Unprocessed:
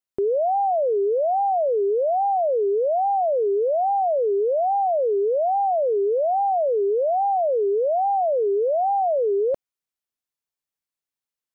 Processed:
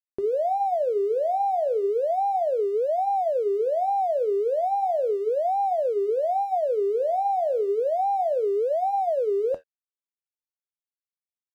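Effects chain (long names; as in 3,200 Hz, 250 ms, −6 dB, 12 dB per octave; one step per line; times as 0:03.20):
flanger 0.34 Hz, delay 7.7 ms, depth 7.5 ms, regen −72%
dead-zone distortion −54.5 dBFS
level +1.5 dB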